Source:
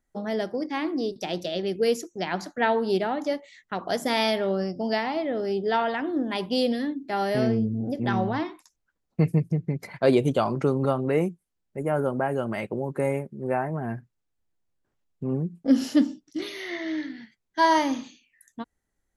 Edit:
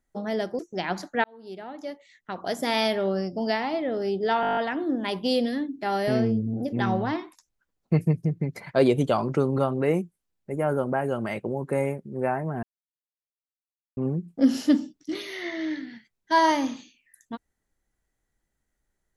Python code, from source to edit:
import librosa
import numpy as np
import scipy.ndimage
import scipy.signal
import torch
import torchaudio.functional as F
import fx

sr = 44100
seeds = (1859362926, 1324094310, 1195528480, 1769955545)

y = fx.edit(x, sr, fx.cut(start_s=0.59, length_s=1.43),
    fx.fade_in_span(start_s=2.67, length_s=1.63),
    fx.stutter(start_s=5.84, slice_s=0.02, count=9),
    fx.silence(start_s=13.9, length_s=1.34), tone=tone)